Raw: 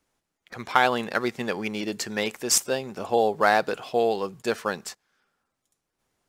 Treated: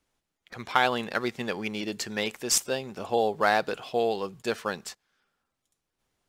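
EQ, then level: low shelf 86 Hz +6 dB; bell 3300 Hz +3.5 dB 0.99 oct; -3.5 dB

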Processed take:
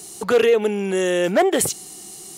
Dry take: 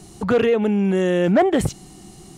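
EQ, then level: RIAA curve recording; bell 430 Hz +6.5 dB 0.52 oct; 0.0 dB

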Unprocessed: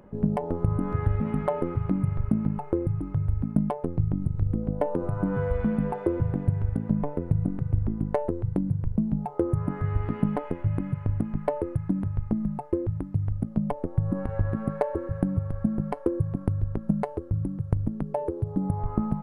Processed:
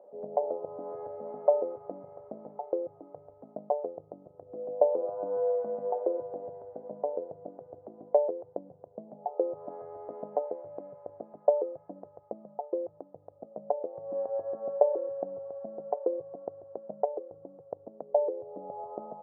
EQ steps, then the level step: Butterworth band-pass 600 Hz, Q 2.3; +5.0 dB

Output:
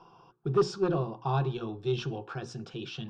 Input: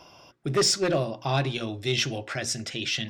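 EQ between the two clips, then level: LPF 2100 Hz 12 dB/oct; fixed phaser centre 400 Hz, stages 8; 0.0 dB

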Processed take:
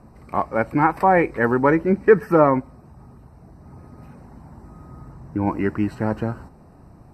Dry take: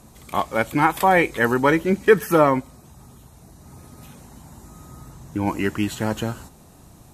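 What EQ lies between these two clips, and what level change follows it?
running mean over 13 samples; +1.5 dB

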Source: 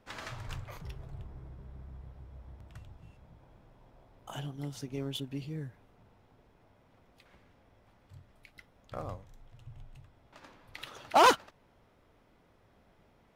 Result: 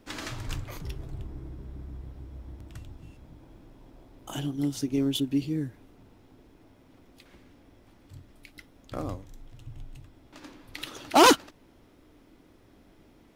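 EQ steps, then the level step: low shelf 99 Hz +9 dB; bell 300 Hz +14.5 dB 0.82 oct; high shelf 2500 Hz +11 dB; 0.0 dB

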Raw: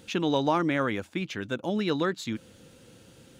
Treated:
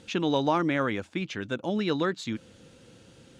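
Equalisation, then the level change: LPF 8200 Hz 12 dB/oct; 0.0 dB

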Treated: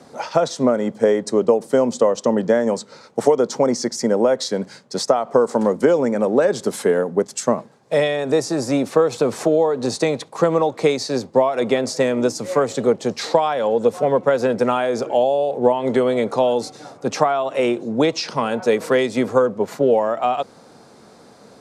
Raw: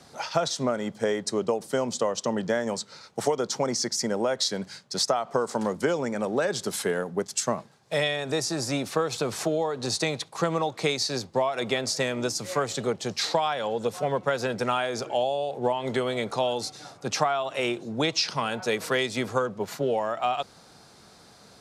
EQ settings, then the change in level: ten-band EQ 125 Hz +4 dB, 250 Hz +11 dB, 500 Hz +11 dB, 1000 Hz +6 dB, 2000 Hz +4 dB, 8000 Hz +4 dB; -3.0 dB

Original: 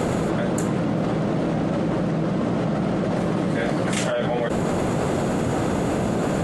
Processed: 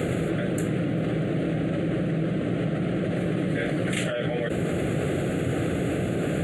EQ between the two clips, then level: HPF 70 Hz; bell 220 Hz -10 dB 0.27 oct; fixed phaser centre 2300 Hz, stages 4; 0.0 dB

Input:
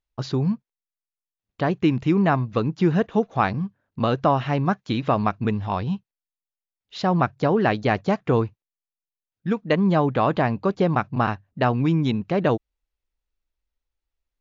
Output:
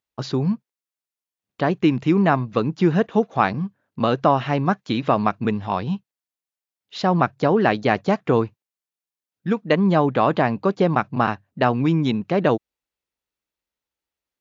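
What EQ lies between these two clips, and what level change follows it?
HPF 140 Hz 12 dB/oct; +2.5 dB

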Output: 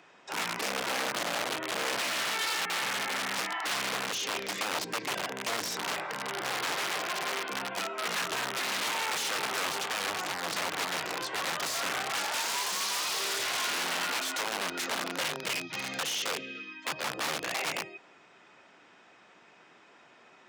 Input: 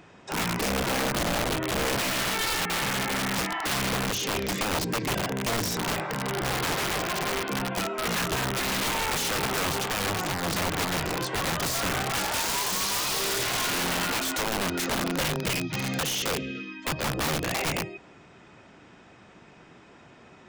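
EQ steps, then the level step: weighting filter A; -3.5 dB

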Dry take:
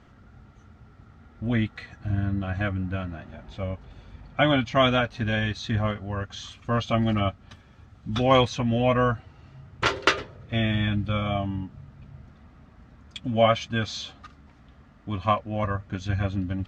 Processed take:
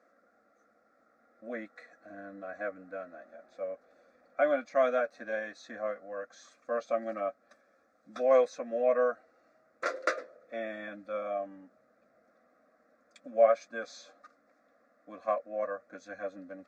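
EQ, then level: resonant high-pass 470 Hz, resonance Q 3.5; fixed phaser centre 610 Hz, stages 8; -8.5 dB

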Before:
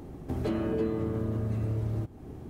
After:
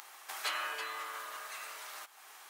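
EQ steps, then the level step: HPF 1100 Hz 24 dB/oct; high shelf 3000 Hz +7.5 dB; +9.0 dB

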